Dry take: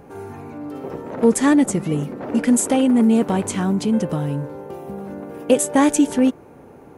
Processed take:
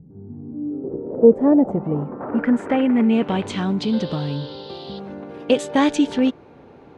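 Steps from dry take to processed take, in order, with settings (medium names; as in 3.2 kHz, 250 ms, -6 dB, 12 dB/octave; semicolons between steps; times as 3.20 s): 3.81–4.98 s: band noise 2.9–4.9 kHz -47 dBFS; low-pass sweep 170 Hz -> 3.9 kHz, 0.05–3.55 s; trim -2 dB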